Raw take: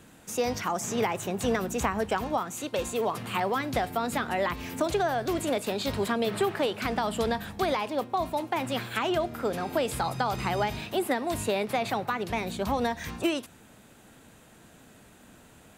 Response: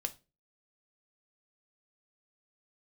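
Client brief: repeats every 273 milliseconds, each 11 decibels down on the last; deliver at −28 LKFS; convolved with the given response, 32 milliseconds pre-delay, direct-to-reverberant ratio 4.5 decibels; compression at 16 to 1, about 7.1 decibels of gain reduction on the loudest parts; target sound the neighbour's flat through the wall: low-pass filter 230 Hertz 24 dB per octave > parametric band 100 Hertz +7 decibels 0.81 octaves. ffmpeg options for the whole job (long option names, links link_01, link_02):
-filter_complex "[0:a]acompressor=threshold=-29dB:ratio=16,aecho=1:1:273|546|819:0.282|0.0789|0.0221,asplit=2[link_01][link_02];[1:a]atrim=start_sample=2205,adelay=32[link_03];[link_02][link_03]afir=irnorm=-1:irlink=0,volume=-5dB[link_04];[link_01][link_04]amix=inputs=2:normalize=0,lowpass=frequency=230:width=0.5412,lowpass=frequency=230:width=1.3066,equalizer=frequency=100:width_type=o:width=0.81:gain=7,volume=12.5dB"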